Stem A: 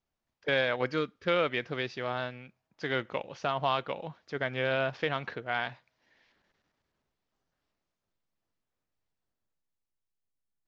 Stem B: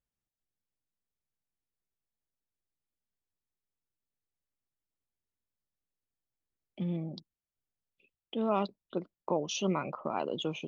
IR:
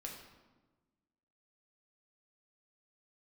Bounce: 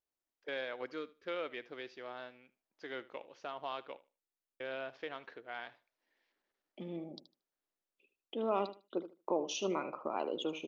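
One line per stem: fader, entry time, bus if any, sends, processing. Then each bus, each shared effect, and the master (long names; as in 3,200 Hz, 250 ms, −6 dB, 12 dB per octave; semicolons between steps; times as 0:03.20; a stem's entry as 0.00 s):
−13.0 dB, 0.00 s, muted 0:03.97–0:04.60, no send, echo send −19.5 dB, no processing
−4.0 dB, 0.00 s, no send, echo send −12.5 dB, no processing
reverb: not used
echo: repeating echo 76 ms, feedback 18%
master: low shelf with overshoot 220 Hz −10.5 dB, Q 1.5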